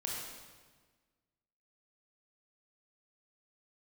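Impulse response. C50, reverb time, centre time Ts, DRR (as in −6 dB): −0.5 dB, 1.4 s, 88 ms, −3.5 dB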